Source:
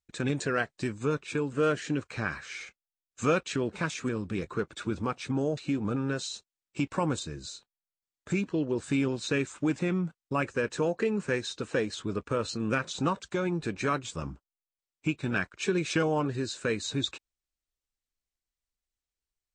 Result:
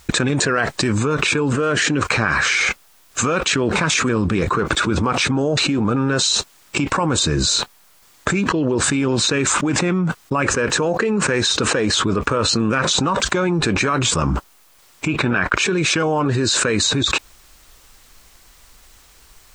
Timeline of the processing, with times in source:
15.08–15.57 tone controls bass -2 dB, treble -11 dB
whole clip: bell 1100 Hz +5 dB 1.1 oct; fast leveller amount 100%; gain +2 dB

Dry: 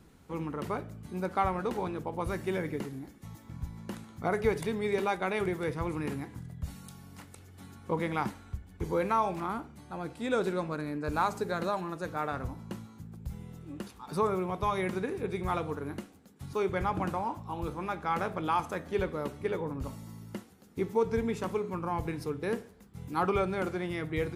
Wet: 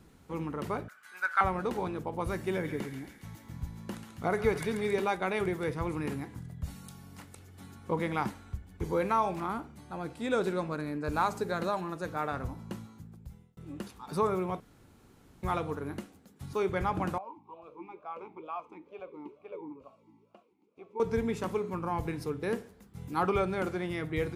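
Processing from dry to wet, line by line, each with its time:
0.88–1.41 resonant high-pass 1500 Hz, resonance Q 6.6
2.51–4.93 thin delay 0.137 s, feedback 64%, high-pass 1500 Hz, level -6.5 dB
12.85–13.57 fade out
14.6–15.43 room tone
17.18–21 vowel sweep a-u 2.2 Hz

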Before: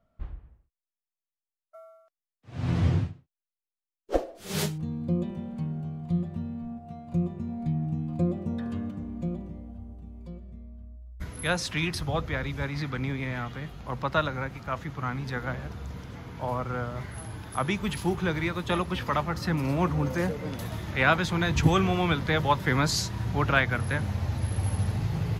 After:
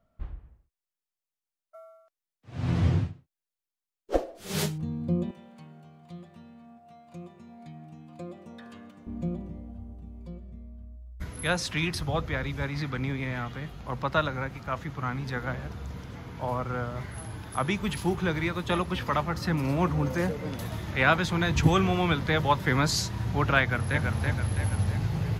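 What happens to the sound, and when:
5.31–9.07 HPF 1200 Hz 6 dB/oct
23.61–24.01 echo throw 0.33 s, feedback 50%, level -3.5 dB

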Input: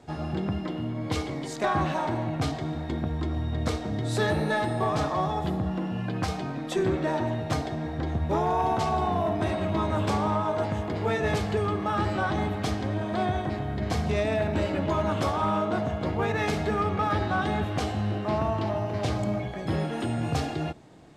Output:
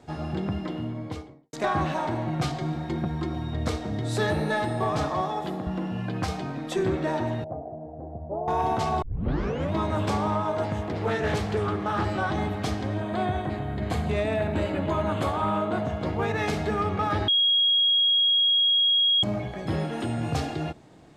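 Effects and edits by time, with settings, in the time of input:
0.75–1.53 studio fade out
2.27–3.54 comb 5.6 ms
5.21–5.67 HPF 220 Hz
7.44–8.48 ladder low-pass 730 Hz, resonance 65%
9.02 tape start 0.71 s
10.81–12.04 Doppler distortion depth 0.28 ms
13.01–15.85 bell 5500 Hz -13.5 dB 0.3 oct
17.28–19.23 bleep 3290 Hz -18 dBFS

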